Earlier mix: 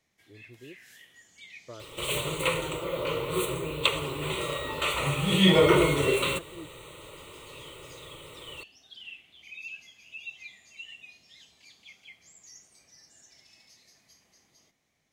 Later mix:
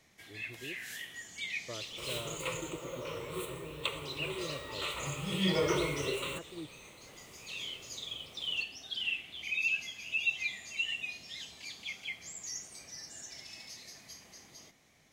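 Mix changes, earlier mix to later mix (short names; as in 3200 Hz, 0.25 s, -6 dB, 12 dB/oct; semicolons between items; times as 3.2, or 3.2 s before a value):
first sound +10.0 dB; second sound -10.5 dB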